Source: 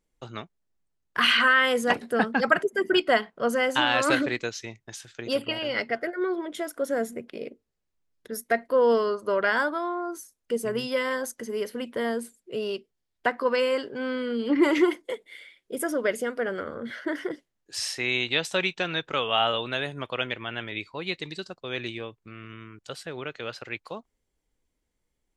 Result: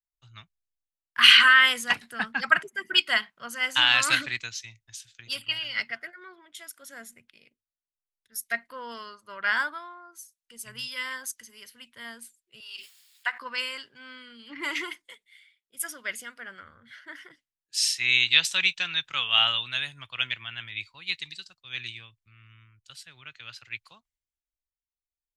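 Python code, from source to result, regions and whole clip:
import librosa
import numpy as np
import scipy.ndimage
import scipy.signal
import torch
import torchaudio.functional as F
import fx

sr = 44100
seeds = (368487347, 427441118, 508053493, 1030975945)

y = fx.chain(x, sr, fx.highpass(hz=810.0, slope=12),
    fx.notch(hz=6000.0, q=6.4),
    fx.pre_swell(db_per_s=26.0), at=(12.6, 13.4))
y = fx.curve_eq(y, sr, hz=(110.0, 460.0, 1000.0, 2600.0), db=(0, -18, -2, 8))
y = fx.band_widen(y, sr, depth_pct=70)
y = y * librosa.db_to_amplitude(-5.5)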